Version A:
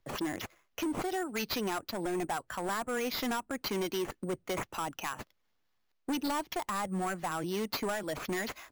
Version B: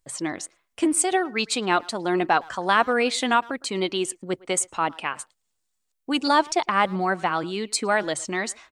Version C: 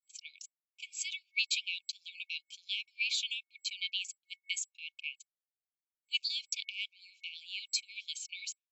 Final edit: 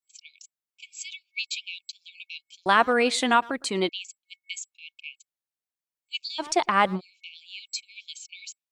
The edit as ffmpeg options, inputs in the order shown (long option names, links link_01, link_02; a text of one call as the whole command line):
ffmpeg -i take0.wav -i take1.wav -i take2.wav -filter_complex "[1:a]asplit=2[link_01][link_02];[2:a]asplit=3[link_03][link_04][link_05];[link_03]atrim=end=2.662[link_06];[link_01]atrim=start=2.658:end=3.892[link_07];[link_04]atrim=start=3.888:end=6.44[link_08];[link_02]atrim=start=6.38:end=7.01[link_09];[link_05]atrim=start=6.95[link_10];[link_06][link_07]acrossfade=duration=0.004:curve1=hsin:curve2=hsin[link_11];[link_11][link_08]acrossfade=duration=0.004:curve1=hsin:curve2=hsin[link_12];[link_12][link_09]acrossfade=duration=0.06:curve1=tri:curve2=tri[link_13];[link_13][link_10]acrossfade=duration=0.06:curve1=tri:curve2=tri" out.wav